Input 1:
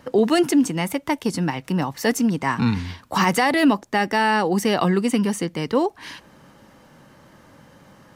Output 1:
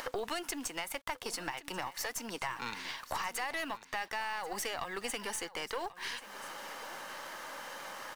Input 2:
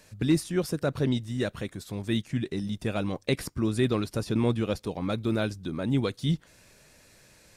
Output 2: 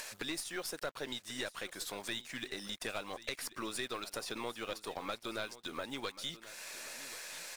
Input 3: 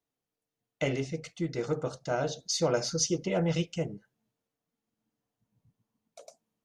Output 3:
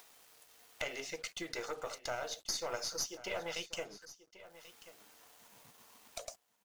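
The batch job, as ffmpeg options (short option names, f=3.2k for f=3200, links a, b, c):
-filter_complex "[0:a]highpass=770,asplit=2[a][b];[b]acompressor=mode=upward:threshold=-34dB:ratio=2.5,volume=1dB[c];[a][c]amix=inputs=2:normalize=0,alimiter=limit=-12dB:level=0:latency=1:release=256,acompressor=threshold=-36dB:ratio=3,acrusher=bits=8:mix=0:aa=0.5,aeval=exprs='(tanh(17.8*val(0)+0.65)-tanh(0.65))/17.8':c=same,asplit=2[d][e];[e]aecho=0:1:1086:0.15[f];[d][f]amix=inputs=2:normalize=0,volume=1dB"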